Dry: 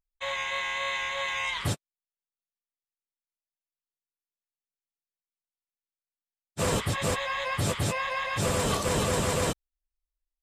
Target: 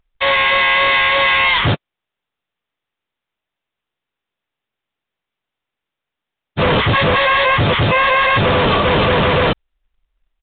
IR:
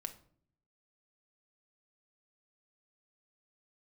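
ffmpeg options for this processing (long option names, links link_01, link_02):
-af "apsyclip=28dB,acrusher=bits=3:mode=log:mix=0:aa=0.000001,aresample=8000,aresample=44100,volume=-8dB"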